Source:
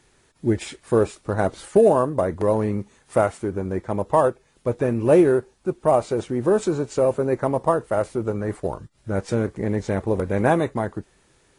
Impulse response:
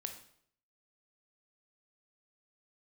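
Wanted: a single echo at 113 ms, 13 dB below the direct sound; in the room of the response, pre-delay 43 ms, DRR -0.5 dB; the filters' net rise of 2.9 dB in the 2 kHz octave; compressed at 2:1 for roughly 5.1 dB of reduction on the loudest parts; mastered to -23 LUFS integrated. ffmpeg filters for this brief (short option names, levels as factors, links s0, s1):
-filter_complex "[0:a]equalizer=f=2000:t=o:g=4,acompressor=threshold=0.1:ratio=2,aecho=1:1:113:0.224,asplit=2[s0][s1];[1:a]atrim=start_sample=2205,adelay=43[s2];[s1][s2]afir=irnorm=-1:irlink=0,volume=1.33[s3];[s0][s3]amix=inputs=2:normalize=0,volume=0.891"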